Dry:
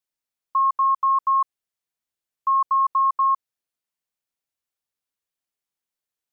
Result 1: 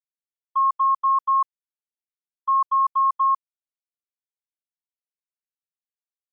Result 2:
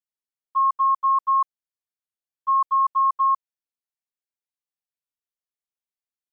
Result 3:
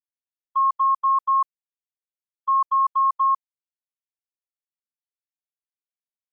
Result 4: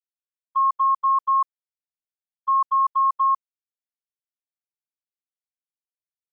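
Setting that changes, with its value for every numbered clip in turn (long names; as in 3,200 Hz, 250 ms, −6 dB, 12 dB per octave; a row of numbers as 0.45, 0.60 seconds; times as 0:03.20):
noise gate, range: −55, −11, −37, −25 decibels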